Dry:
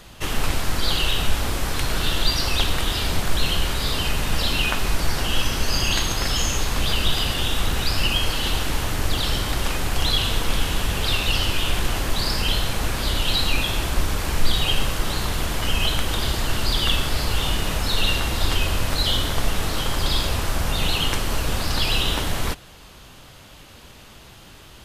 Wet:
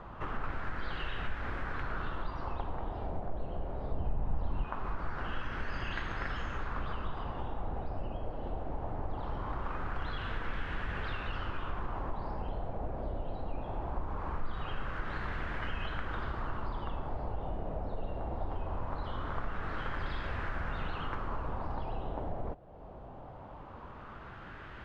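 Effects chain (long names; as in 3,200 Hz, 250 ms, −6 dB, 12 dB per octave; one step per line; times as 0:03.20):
0:03.92–0:04.64: low-shelf EQ 200 Hz +11.5 dB
downward compressor 2 to 1, threshold −40 dBFS, peak gain reduction 18.5 dB
auto-filter low-pass sine 0.21 Hz 680–1,700 Hz
level −2 dB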